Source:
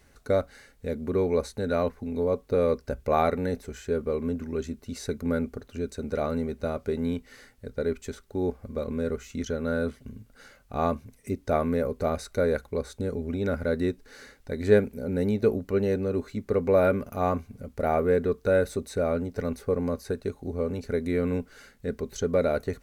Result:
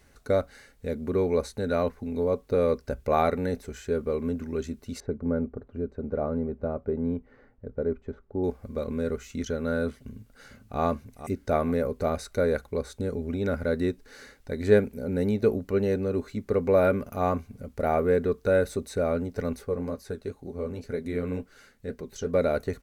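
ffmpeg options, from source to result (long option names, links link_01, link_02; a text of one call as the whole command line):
ffmpeg -i in.wav -filter_complex "[0:a]asettb=1/sr,asplit=3[link_01][link_02][link_03];[link_01]atrim=end=5.004[link_04];[link_02]atrim=start=5:end=8.44,asetpts=PTS-STARTPTS,afade=type=in:duration=0.004:curve=qsin,afade=type=out:start_time=3.436:duration=0.004:curve=qsin,lowpass=1000[link_05];[link_03]atrim=start=8.436[link_06];[link_04][link_05]acrossfade=duration=0.004:curve1=hsin:curve2=qsin[link_07];[link_07][link_06]acrossfade=duration=0.004:curve1=qsin:curve2=hsin,asplit=2[link_08][link_09];[link_09]afade=type=in:start_time=9.97:duration=0.01,afade=type=out:start_time=10.81:duration=0.01,aecho=0:1:450|900|1350|1800:0.266073|0.106429|0.0425716|0.0170286[link_10];[link_08][link_10]amix=inputs=2:normalize=0,asplit=3[link_11][link_12][link_13];[link_11]afade=type=out:start_time=19.64:duration=0.02[link_14];[link_12]flanger=delay=5:depth=8.7:regen=-44:speed=2:shape=triangular,afade=type=in:start_time=19.64:duration=0.02,afade=type=out:start_time=22.33:duration=0.02[link_15];[link_13]afade=type=in:start_time=22.33:duration=0.02[link_16];[link_14][link_15][link_16]amix=inputs=3:normalize=0" out.wav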